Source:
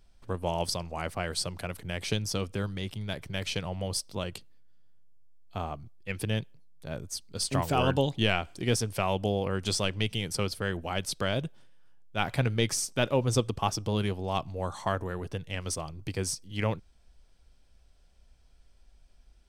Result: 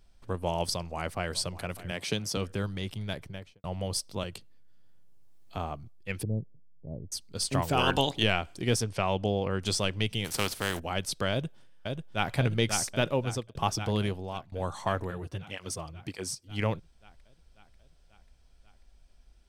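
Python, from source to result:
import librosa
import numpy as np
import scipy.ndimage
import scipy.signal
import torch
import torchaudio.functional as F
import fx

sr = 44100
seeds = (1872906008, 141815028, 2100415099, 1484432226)

y = fx.echo_throw(x, sr, start_s=0.73, length_s=0.62, ms=600, feedback_pct=35, wet_db=-16.0)
y = fx.highpass(y, sr, hz=120.0, slope=24, at=(1.91, 2.37))
y = fx.studio_fade_out(y, sr, start_s=3.08, length_s=0.56)
y = fx.band_squash(y, sr, depth_pct=40, at=(4.23, 5.57))
y = fx.gaussian_blur(y, sr, sigma=15.0, at=(6.23, 7.12))
y = fx.spec_clip(y, sr, under_db=16, at=(7.77, 8.22), fade=0.02)
y = fx.lowpass(y, sr, hz=6500.0, slope=12, at=(8.84, 9.62))
y = fx.spec_flatten(y, sr, power=0.49, at=(10.24, 10.78), fade=0.02)
y = fx.echo_throw(y, sr, start_s=11.31, length_s=1.03, ms=540, feedback_pct=70, wet_db=-4.0)
y = fx.flanger_cancel(y, sr, hz=1.7, depth_ms=5.4, at=(15.1, 16.48), fade=0.02)
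y = fx.edit(y, sr, fx.fade_out_span(start_s=12.86, length_s=0.69, curve='qsin'),
    fx.fade_out_to(start_s=14.05, length_s=0.47, floor_db=-20.0), tone=tone)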